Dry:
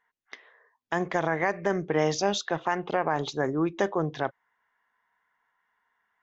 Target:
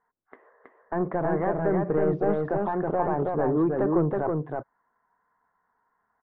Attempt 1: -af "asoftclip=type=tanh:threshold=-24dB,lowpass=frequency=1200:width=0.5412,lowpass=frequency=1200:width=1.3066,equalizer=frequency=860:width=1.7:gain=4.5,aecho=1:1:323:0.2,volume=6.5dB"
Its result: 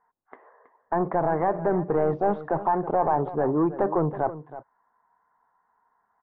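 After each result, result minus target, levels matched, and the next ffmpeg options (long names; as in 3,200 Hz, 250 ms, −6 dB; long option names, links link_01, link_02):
echo-to-direct −11.5 dB; 1,000 Hz band +4.0 dB
-af "asoftclip=type=tanh:threshold=-24dB,lowpass=frequency=1200:width=0.5412,lowpass=frequency=1200:width=1.3066,equalizer=frequency=860:width=1.7:gain=4.5,aecho=1:1:323:0.75,volume=6.5dB"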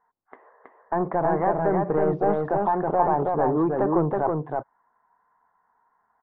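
1,000 Hz band +4.5 dB
-af "asoftclip=type=tanh:threshold=-24dB,lowpass=frequency=1200:width=0.5412,lowpass=frequency=1200:width=1.3066,equalizer=frequency=860:width=1.7:gain=-3.5,aecho=1:1:323:0.75,volume=6.5dB"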